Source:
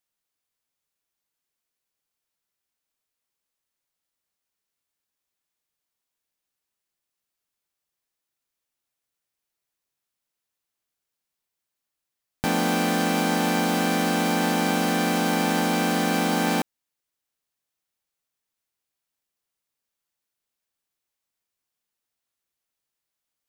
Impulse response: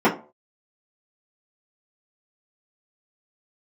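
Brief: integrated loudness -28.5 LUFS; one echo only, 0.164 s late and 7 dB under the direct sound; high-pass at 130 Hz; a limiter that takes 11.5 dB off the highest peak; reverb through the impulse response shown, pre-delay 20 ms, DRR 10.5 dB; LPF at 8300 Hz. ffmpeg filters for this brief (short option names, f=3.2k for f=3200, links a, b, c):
-filter_complex "[0:a]highpass=130,lowpass=8.3k,alimiter=limit=-20.5dB:level=0:latency=1,aecho=1:1:164:0.447,asplit=2[a][b];[1:a]atrim=start_sample=2205,adelay=20[c];[b][c]afir=irnorm=-1:irlink=0,volume=-31dB[d];[a][d]amix=inputs=2:normalize=0,volume=1dB"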